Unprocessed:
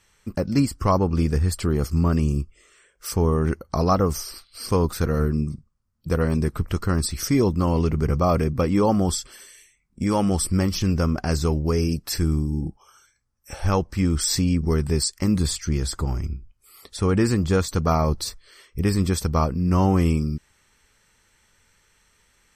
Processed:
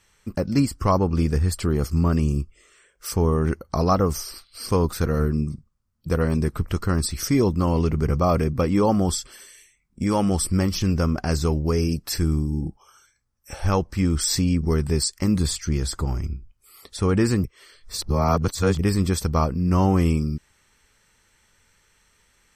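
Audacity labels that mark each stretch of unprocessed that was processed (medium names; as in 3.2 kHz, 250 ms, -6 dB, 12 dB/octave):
17.440000	18.790000	reverse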